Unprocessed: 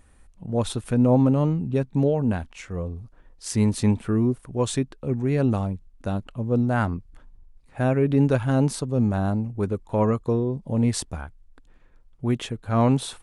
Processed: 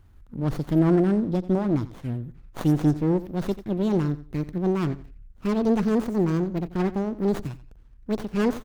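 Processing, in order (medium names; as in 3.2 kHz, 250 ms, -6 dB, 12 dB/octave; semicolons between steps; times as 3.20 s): gliding tape speed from 126% -> 180%; peaking EQ 720 Hz -14.5 dB 0.99 oct; touch-sensitive phaser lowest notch 550 Hz, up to 3.2 kHz, full sweep at -19.5 dBFS; in parallel at -6 dB: saturation -18 dBFS, distortion -16 dB; on the sum: feedback delay 88 ms, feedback 25%, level -16 dB; sliding maximum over 17 samples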